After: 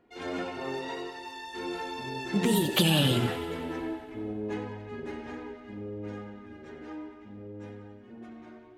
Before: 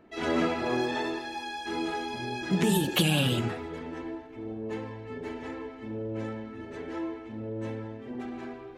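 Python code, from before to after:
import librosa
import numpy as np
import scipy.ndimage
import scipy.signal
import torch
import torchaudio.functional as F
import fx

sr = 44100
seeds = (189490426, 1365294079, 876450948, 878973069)

y = fx.doppler_pass(x, sr, speed_mps=26, closest_m=29.0, pass_at_s=3.68)
y = fx.echo_thinned(y, sr, ms=92, feedback_pct=73, hz=420.0, wet_db=-14.5)
y = y * librosa.db_to_amplitude(3.0)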